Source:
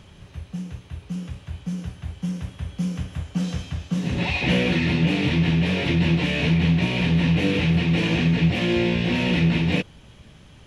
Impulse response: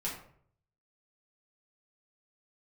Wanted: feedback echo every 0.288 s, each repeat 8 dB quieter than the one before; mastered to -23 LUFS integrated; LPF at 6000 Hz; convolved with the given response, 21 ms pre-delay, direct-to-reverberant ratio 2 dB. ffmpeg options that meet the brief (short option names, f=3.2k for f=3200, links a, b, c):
-filter_complex "[0:a]lowpass=6k,aecho=1:1:288|576|864|1152|1440:0.398|0.159|0.0637|0.0255|0.0102,asplit=2[a][b];[1:a]atrim=start_sample=2205,adelay=21[c];[b][c]afir=irnorm=-1:irlink=0,volume=-5dB[d];[a][d]amix=inputs=2:normalize=0,volume=-4dB"